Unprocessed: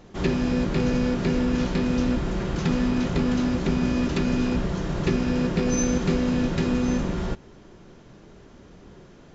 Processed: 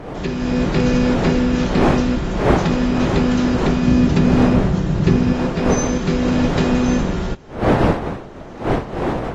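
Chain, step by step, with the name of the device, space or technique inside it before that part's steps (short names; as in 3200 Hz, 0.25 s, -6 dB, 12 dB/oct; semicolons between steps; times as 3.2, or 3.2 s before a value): 3.87–5.33 bell 120 Hz +9.5 dB 2.7 oct; smartphone video outdoors (wind noise 560 Hz; AGC gain up to 9 dB; gain -1 dB; AAC 48 kbps 44100 Hz)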